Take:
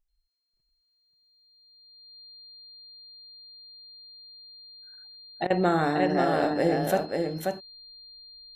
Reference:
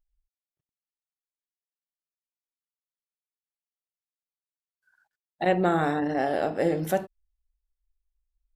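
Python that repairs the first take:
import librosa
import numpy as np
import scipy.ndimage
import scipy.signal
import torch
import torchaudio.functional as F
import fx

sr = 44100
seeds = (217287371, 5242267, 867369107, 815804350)

y = fx.notch(x, sr, hz=4200.0, q=30.0)
y = fx.fix_interpolate(y, sr, at_s=(5.47,), length_ms=31.0)
y = fx.fix_echo_inverse(y, sr, delay_ms=536, level_db=-4.0)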